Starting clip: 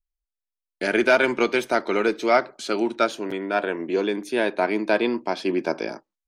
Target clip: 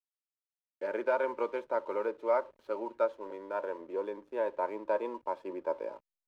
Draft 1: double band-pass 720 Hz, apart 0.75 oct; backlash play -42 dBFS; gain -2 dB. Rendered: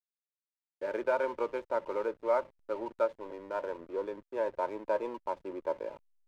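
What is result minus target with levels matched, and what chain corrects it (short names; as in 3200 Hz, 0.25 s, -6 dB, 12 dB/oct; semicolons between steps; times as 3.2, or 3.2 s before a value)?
backlash: distortion +11 dB
double band-pass 720 Hz, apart 0.75 oct; backlash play -54 dBFS; gain -2 dB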